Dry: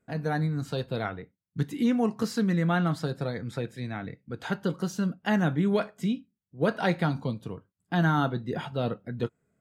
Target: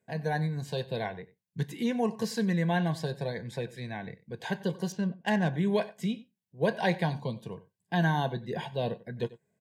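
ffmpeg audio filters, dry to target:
ffmpeg -i in.wav -filter_complex "[0:a]highpass=130,equalizer=frequency=280:width=4.1:gain=-13.5,asplit=2[link_01][link_02];[link_02]adelay=93.29,volume=-19dB,highshelf=frequency=4000:gain=-2.1[link_03];[link_01][link_03]amix=inputs=2:normalize=0,asettb=1/sr,asplit=3[link_04][link_05][link_06];[link_04]atrim=end=4.924[link_07];[link_05]atrim=start=4.92:end=5.54,asetpts=PTS-STARTPTS,afade=type=in:duration=0.004:curve=qsin,afade=type=out:start_time=0.616:duration=0.004:curve=qsin,adynamicsmooth=sensitivity=6.5:basefreq=2600[link_08];[link_06]atrim=start=5.536[link_09];[link_07][link_08]acrossfade=duration=0.004:curve1=hsin:curve2=qsin[link_10];[link_10][link_09]acrossfade=duration=0.004:curve1=qsin:curve2=hsin,asuperstop=centerf=1300:order=8:qfactor=3.5" out.wav

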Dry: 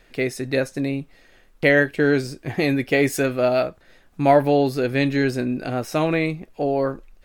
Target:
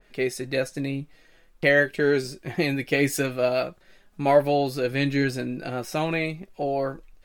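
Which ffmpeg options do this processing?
ffmpeg -i in.wav -af "flanger=delay=4.7:depth=2.1:regen=48:speed=0.48:shape=triangular,adynamicequalizer=threshold=0.0158:dfrequency=2300:dqfactor=0.7:tfrequency=2300:tqfactor=0.7:attack=5:release=100:ratio=0.375:range=2:mode=boostabove:tftype=highshelf" out.wav

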